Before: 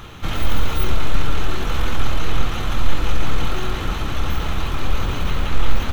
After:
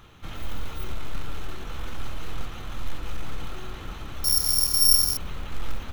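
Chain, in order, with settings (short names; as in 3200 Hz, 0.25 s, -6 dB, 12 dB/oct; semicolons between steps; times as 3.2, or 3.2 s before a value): in parallel at -7 dB: short-mantissa float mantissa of 2-bit; 4.24–5.17 on the sum: careless resampling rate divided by 8×, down filtered, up zero stuff; gain -16.5 dB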